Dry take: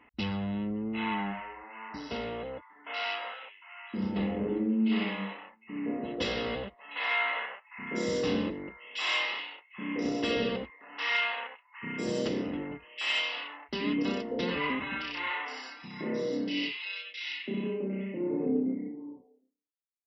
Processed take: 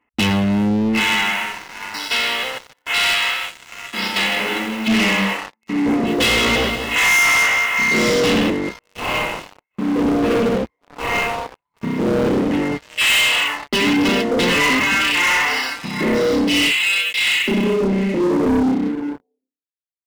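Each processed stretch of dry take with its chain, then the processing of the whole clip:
0.99–4.87 s: formants flattened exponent 0.6 + high-pass 1.5 kHz 6 dB/octave + feedback delay 155 ms, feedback 42%, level -11 dB
5.88–8.10 s: doubling 18 ms -5 dB + bit-crushed delay 198 ms, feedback 55%, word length 9-bit, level -10 dB
8.79–12.51 s: median filter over 25 samples + treble shelf 3.3 kHz -11 dB
whole clip: dynamic bell 2.4 kHz, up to +6 dB, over -46 dBFS, Q 0.83; waveshaping leveller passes 5

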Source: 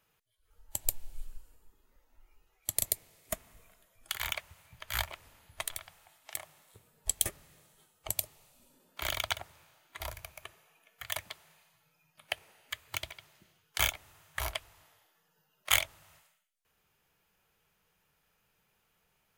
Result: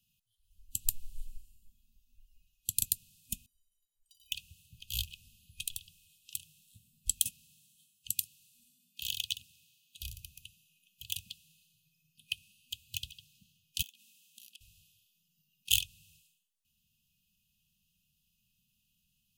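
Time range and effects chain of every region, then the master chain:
3.46–4.32 s: compression 2.5:1, threshold -42 dBFS + inharmonic resonator 350 Hz, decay 0.4 s, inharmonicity 0.03
7.20–10.02 s: high-pass 150 Hz 6 dB/octave + bass shelf 320 Hz -5 dB
13.82–14.61 s: compression 10:1, threshold -45 dBFS + brick-wall FIR high-pass 180 Hz
whole clip: FFT band-reject 250–2500 Hz; dynamic bell 2.3 kHz, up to +3 dB, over -54 dBFS, Q 1.9

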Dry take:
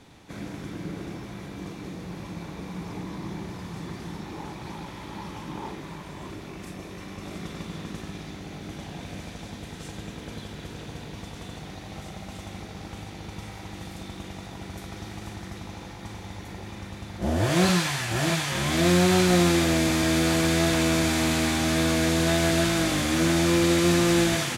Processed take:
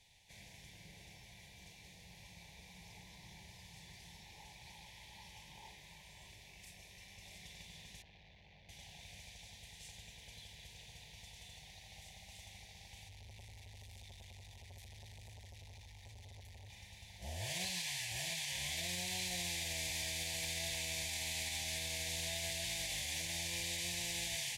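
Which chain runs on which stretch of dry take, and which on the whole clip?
8.02–8.69 s: distance through air 260 m + transformer saturation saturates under 520 Hz
13.08–16.70 s: resonant low shelf 120 Hz +7.5 dB, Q 3 + transformer saturation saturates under 530 Hz
whole clip: Chebyshev band-stop 840–2000 Hz, order 2; amplifier tone stack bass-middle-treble 10-0-10; peak limiter -24.5 dBFS; trim -6 dB

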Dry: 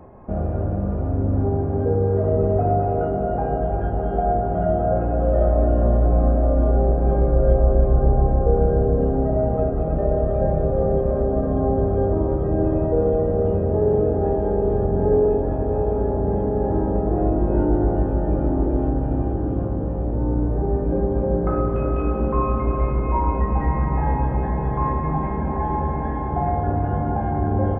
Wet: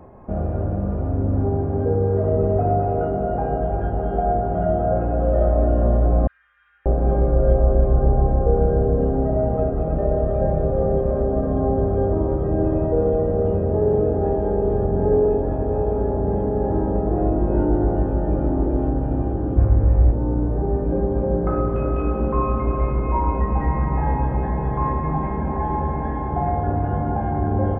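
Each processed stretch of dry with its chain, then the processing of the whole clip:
6.27–6.86 s: elliptic high-pass 1.7 kHz, stop band 60 dB + distance through air 160 m
19.57–20.12 s: resonant low-pass 2.2 kHz, resonance Q 2.6 + resonant low shelf 120 Hz +10 dB, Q 1.5
whole clip: none

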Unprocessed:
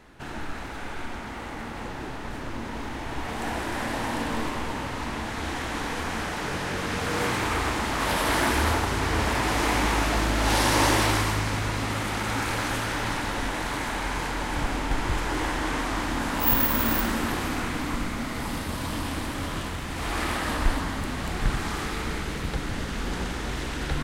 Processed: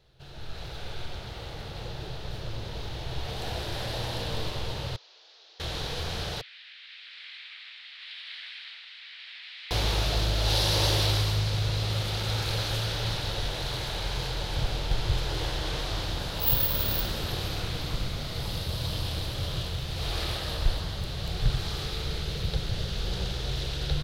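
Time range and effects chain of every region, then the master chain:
4.96–5.60 s: one-bit delta coder 32 kbps, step -50.5 dBFS + steep high-pass 340 Hz 48 dB/octave + differentiator
6.41–9.71 s: Chebyshev band-pass 2–9 kHz, order 3 + distance through air 450 m
whole clip: peaking EQ 260 Hz -11 dB 0.54 oct; level rider gain up to 9 dB; graphic EQ 125/250/500/1000/2000/4000/8000 Hz +7/-9/+3/-10/-10/+11/-10 dB; trim -8.5 dB

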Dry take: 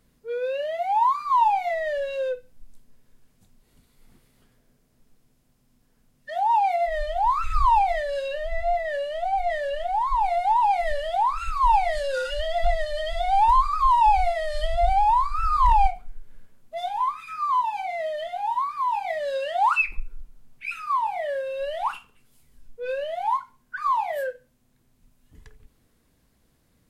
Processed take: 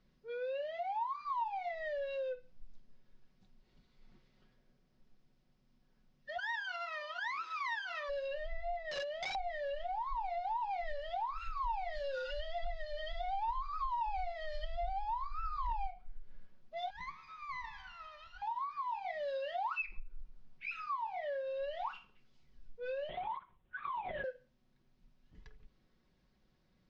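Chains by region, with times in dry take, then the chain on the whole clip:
6.37–8.08 s: comb filter that takes the minimum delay 0.63 ms + high-pass 350 Hz 24 dB/octave + whistle 990 Hz -47 dBFS
8.91–9.35 s: high-pass 68 Hz 6 dB/octave + integer overflow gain 23.5 dB
16.90–18.42 s: comb filter that takes the minimum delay 0.71 ms + band-stop 1.6 kHz, Q 30 + feedback comb 77 Hz, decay 1.8 s, mix 70%
23.09–24.24 s: peaking EQ 1.2 kHz -7 dB 0.8 oct + LPC vocoder at 8 kHz whisper
whole clip: steep low-pass 5.6 kHz 36 dB/octave; comb 5.4 ms, depth 46%; compression 3:1, threshold -29 dBFS; trim -8.5 dB

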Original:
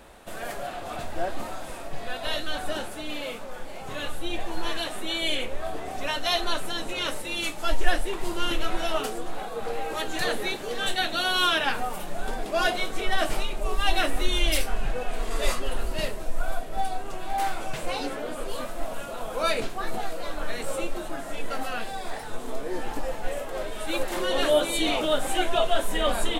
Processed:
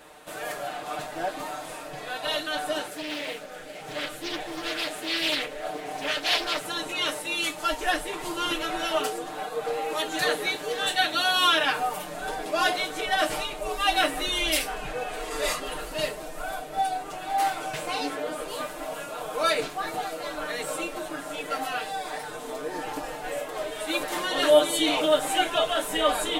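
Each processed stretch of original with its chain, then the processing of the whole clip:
2.87–6.65 s: Butterworth band-stop 1 kHz, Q 2 + loudspeaker Doppler distortion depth 0.59 ms
whole clip: high-pass 60 Hz 6 dB/octave; bass shelf 190 Hz -10 dB; comb 6.6 ms, depth 84%

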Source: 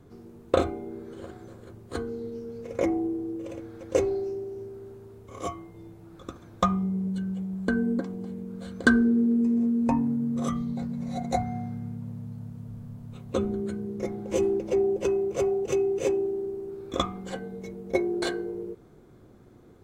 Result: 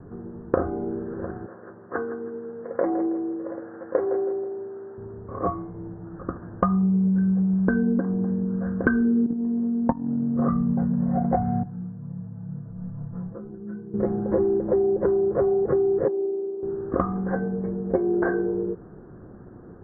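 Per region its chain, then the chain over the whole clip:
1.46–4.98 s: frequency weighting A + feedback delay 161 ms, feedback 33%, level -12.5 dB
9.26–10.39 s: level held to a coarse grid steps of 11 dB + transient shaper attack +5 dB, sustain -10 dB
11.63–13.94 s: level held to a coarse grid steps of 22 dB + comb 6 ms, depth 92% + detune thickener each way 25 cents
16.08–16.63 s: band-pass filter 430 Hz, Q 1.5 + bass shelf 410 Hz -10.5 dB
whole clip: steep low-pass 1.8 kHz 96 dB/octave; peaking EQ 180 Hz +6 dB 0.23 oct; compression 6:1, threshold -27 dBFS; trim +8.5 dB

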